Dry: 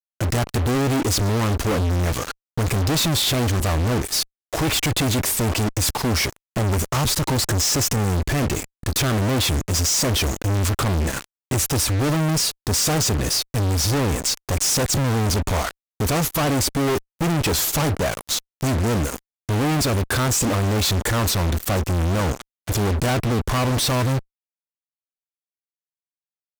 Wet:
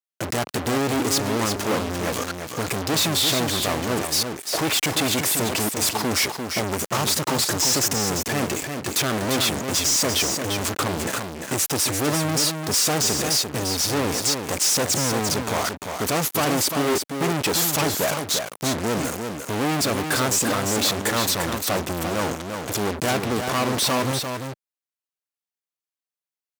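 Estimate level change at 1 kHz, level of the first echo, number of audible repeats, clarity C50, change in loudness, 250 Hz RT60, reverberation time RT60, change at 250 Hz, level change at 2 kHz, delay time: +0.5 dB, -6.0 dB, 1, none, -1.0 dB, none, none, -2.0 dB, +1.0 dB, 0.346 s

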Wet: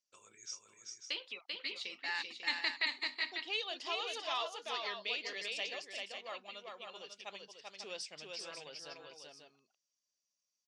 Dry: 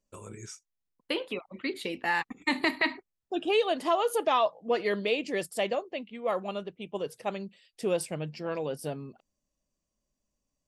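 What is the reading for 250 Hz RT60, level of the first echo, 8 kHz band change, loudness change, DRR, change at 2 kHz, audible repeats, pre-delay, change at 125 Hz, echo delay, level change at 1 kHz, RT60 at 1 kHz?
none, -3.5 dB, -5.0 dB, -9.0 dB, none, -6.0 dB, 2, none, under -25 dB, 0.39 s, -13.0 dB, none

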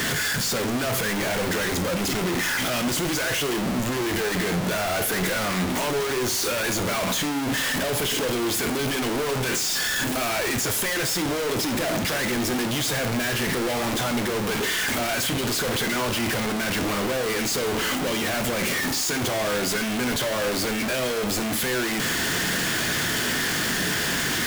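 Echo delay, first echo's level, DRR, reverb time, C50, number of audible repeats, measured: none, none, 8.5 dB, 0.60 s, 13.0 dB, none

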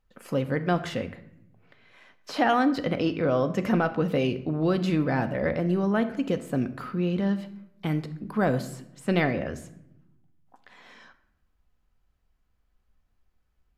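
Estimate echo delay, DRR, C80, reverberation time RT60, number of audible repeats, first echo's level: none, 9.0 dB, 16.5 dB, 0.80 s, none, none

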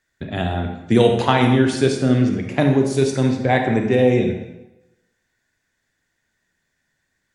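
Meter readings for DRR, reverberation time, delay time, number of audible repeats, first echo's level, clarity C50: 3.5 dB, 0.95 s, none, none, none, 5.5 dB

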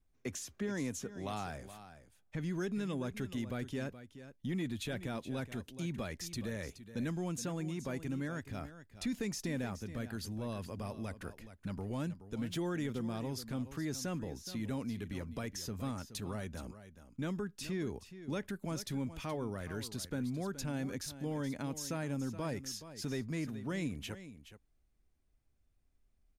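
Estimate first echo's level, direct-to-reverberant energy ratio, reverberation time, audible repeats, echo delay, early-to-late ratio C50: -13.0 dB, none, none, 1, 0.423 s, none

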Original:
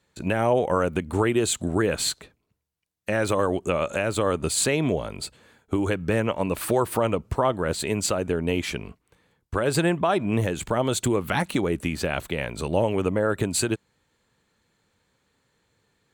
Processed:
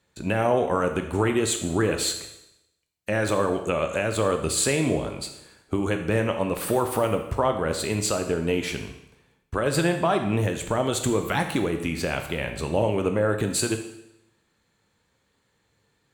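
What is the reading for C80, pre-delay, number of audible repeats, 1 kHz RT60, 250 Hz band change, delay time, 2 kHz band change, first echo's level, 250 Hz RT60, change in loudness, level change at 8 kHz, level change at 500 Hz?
10.0 dB, 13 ms, none, 0.80 s, -0.5 dB, none, 0.0 dB, none, 0.85 s, 0.0 dB, +0.5 dB, 0.0 dB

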